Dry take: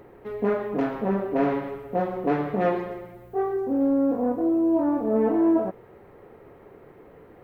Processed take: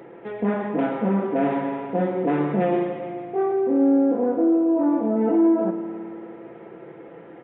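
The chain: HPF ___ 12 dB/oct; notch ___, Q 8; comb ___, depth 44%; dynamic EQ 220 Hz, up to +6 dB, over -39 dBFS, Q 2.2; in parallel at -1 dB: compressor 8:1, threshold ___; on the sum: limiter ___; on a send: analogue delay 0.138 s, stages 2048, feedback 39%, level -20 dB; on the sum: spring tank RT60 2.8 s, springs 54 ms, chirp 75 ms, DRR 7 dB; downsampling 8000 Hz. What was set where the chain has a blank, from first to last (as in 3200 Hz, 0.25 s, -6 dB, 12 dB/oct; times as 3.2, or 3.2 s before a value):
170 Hz, 1100 Hz, 6 ms, -33 dBFS, -13.5 dBFS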